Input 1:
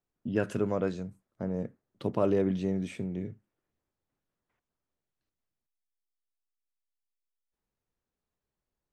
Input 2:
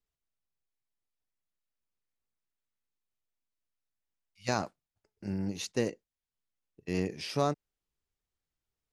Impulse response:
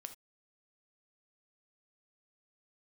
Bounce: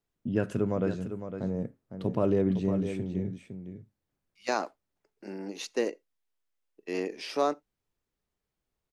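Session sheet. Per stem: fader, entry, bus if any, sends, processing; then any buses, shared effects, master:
−4.0 dB, 0.00 s, send −8.5 dB, echo send −7.5 dB, low-shelf EQ 350 Hz +6 dB
+2.0 dB, 0.00 s, send −11.5 dB, no echo send, high-pass filter 280 Hz 24 dB per octave; high-shelf EQ 4,300 Hz −7.5 dB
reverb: on, pre-delay 3 ms
echo: single-tap delay 507 ms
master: no processing

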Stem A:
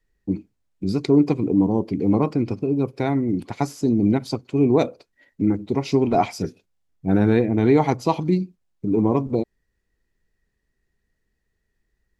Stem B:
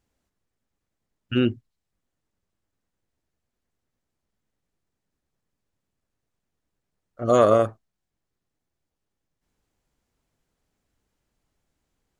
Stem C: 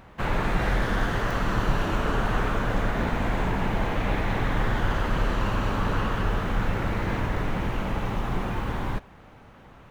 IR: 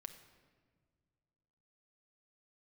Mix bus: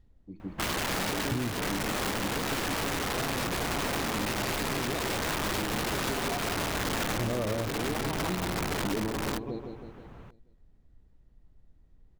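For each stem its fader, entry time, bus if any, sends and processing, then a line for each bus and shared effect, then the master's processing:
−5.5 dB, 0.00 s, no send, echo send −9.5 dB, parametric band 3,600 Hz +11.5 dB 0.83 octaves; automatic ducking −16 dB, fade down 0.25 s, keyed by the second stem
0.0 dB, 0.00 s, no send, no echo send, spectral tilt −4.5 dB per octave; downward compressor 2.5 to 1, threshold −26 dBFS, peak gain reduction 12.5 dB
−4.5 dB, 0.40 s, send −21 dB, no echo send, low-shelf EQ 450 Hz +7 dB; wrap-around overflow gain 19 dB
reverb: on, pre-delay 6 ms
echo: repeating echo 160 ms, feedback 51%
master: downward compressor 5 to 1, threshold −28 dBFS, peak gain reduction 10 dB

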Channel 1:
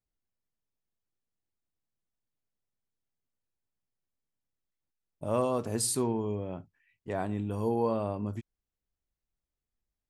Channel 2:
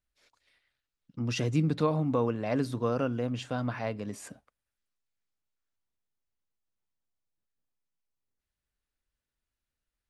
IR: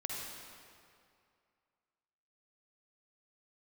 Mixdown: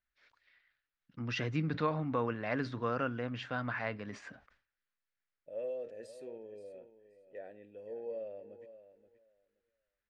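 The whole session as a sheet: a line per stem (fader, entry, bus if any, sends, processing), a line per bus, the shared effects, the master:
−4.0 dB, 0.25 s, no send, echo send −13.5 dB, formant filter e; notch filter 2,800 Hz, Q 20
−7.5 dB, 0.00 s, no send, no echo send, low-pass filter 5,300 Hz 24 dB per octave; parametric band 1,700 Hz +12.5 dB 1.3 octaves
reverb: not used
echo: repeating echo 525 ms, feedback 16%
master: level that may fall only so fast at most 150 dB per second

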